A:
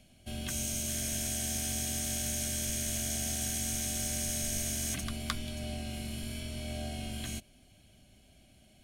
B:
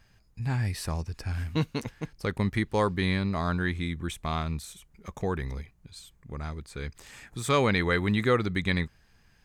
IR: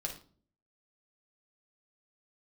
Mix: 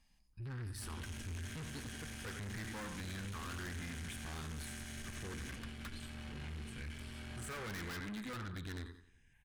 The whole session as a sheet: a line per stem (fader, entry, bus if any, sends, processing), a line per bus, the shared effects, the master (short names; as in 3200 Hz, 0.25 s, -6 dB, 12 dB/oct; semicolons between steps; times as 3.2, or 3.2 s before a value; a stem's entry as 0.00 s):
-0.5 dB, 0.55 s, no send, no echo send, LPF 2800 Hz 12 dB/oct; crossover distortion -45.5 dBFS
-6.5 dB, 0.00 s, send -12.5 dB, echo send -11.5 dB, de-esser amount 70%; high shelf 5900 Hz -7 dB; step phaser 3 Hz 400–6800 Hz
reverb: on, RT60 0.45 s, pre-delay 6 ms
echo: feedback echo 90 ms, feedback 36%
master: tube stage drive 39 dB, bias 0.35; fifteen-band EQ 160 Hz -4 dB, 630 Hz -11 dB, 1600 Hz +7 dB, 10000 Hz +10 dB; wavefolder -39 dBFS